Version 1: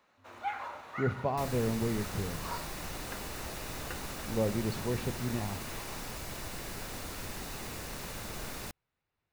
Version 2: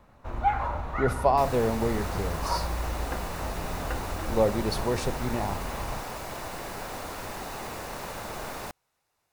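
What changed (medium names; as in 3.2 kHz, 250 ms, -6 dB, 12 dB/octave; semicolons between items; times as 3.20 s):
speech: remove distance through air 350 m; first sound: remove high-pass 550 Hz 12 dB/octave; master: add peaking EQ 800 Hz +10.5 dB 2 oct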